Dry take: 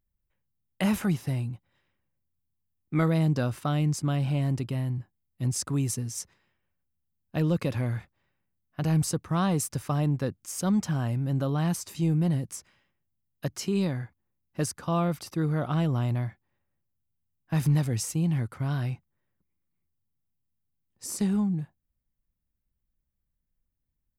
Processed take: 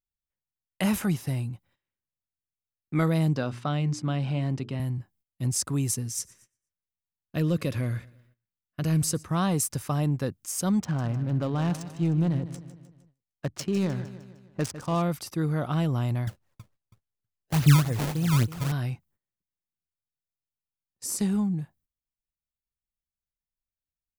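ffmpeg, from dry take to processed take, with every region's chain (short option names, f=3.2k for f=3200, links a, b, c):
-filter_complex "[0:a]asettb=1/sr,asplit=3[a][b][c];[a]atrim=end=3.364[d];[b]atrim=start=3.36:end=4.8,asetpts=PTS-STARTPTS,afade=t=in:d=0.004:c=qsin,afade=t=out:st=1.436:d=0.004:c=qsin,highpass=110,lowpass=4.9k,bandreject=f=60:t=h:w=6,bandreject=f=120:t=h:w=6,bandreject=f=180:t=h:w=6,bandreject=f=240:t=h:w=6,bandreject=f=300:t=h:w=6,bandreject=f=360:t=h:w=6,bandreject=f=420:t=h:w=6[e];[c]atrim=start=4.796[f];[d][e]acrossfade=d=0.004:c1=hsin:c2=qsin[g];[g][f]acrossfade=d=0.004:c1=qsin:c2=hsin,asettb=1/sr,asplit=3[h][i][j];[h]atrim=end=6.074[k];[i]atrim=start=6.07:end=9.25,asetpts=PTS-STARTPTS,afade=t=in:d=0.004:c=qsin,afade=t=out:st=3.176:d=0.004:c=qsin,equalizer=f=830:t=o:w=0.28:g=-12.5,aecho=1:1:117|234|351|468:0.0668|0.0361|0.0195|0.0105,atrim=end_sample=140238[l];[j]atrim=start=9.246[m];[k][l]acrossfade=d=0.004:c1=hsin:c2=qsin[n];[n][m]acrossfade=d=0.004:c1=qsin:c2=hsin,asettb=1/sr,asplit=3[o][p][q];[o]atrim=end=10.804[r];[p]atrim=start=10.8:end=15.02,asetpts=PTS-STARTPTS,afade=t=in:d=0.004:c=qsin,afade=t=out:st=4.216:d=0.004:c=qsin,highshelf=f=5.5k:g=3.5,adynamicsmooth=sensitivity=7.5:basefreq=980,aecho=1:1:153|306|459|612|765:0.224|0.112|0.056|0.028|0.014,atrim=end_sample=186102[s];[q]atrim=start=15.016[t];[r][s]acrossfade=d=0.004:c1=hsin:c2=qsin[u];[u][t]acrossfade=d=0.004:c1=qsin:c2=hsin,asettb=1/sr,asplit=3[v][w][x];[v]atrim=end=16.274[y];[w]atrim=start=16.27:end=18.72,asetpts=PTS-STARTPTS,afade=t=in:d=0.004:c=qsin,afade=t=out:st=2.446:d=0.004:c=qsin,aphaser=in_gain=1:out_gain=1:delay=2.8:decay=0.53:speed=1.4:type=triangular,aecho=1:1:324|648|972:0.211|0.0528|0.0132,atrim=end_sample=108045,acrusher=samples=22:mix=1:aa=0.000001:lfo=1:lforange=35.2:lforate=3.5[z];[x]atrim=start=18.716[aa];[y][z]acrossfade=d=0.004:c1=hsin:c2=qsin[ab];[ab][aa]acrossfade=d=0.004:c1=qsin:c2=hsin,agate=range=-17dB:threshold=-60dB:ratio=16:detection=peak,highshelf=f=5.3k:g=5.5"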